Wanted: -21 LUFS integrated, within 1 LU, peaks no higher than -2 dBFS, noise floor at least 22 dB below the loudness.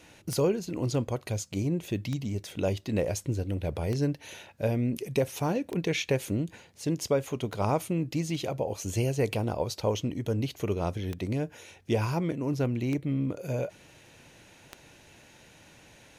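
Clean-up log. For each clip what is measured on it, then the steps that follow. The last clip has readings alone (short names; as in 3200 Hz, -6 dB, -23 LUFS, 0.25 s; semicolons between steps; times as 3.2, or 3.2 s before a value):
clicks 9; loudness -30.5 LUFS; peak -14.5 dBFS; loudness target -21.0 LUFS
-> de-click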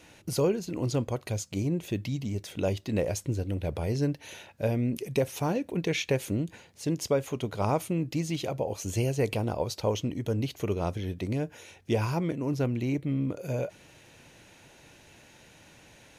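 clicks 0; loudness -30.5 LUFS; peak -14.5 dBFS; loudness target -21.0 LUFS
-> gain +9.5 dB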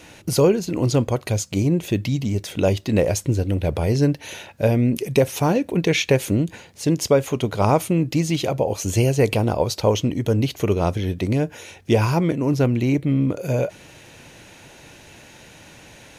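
loudness -21.0 LUFS; peak -5.0 dBFS; noise floor -46 dBFS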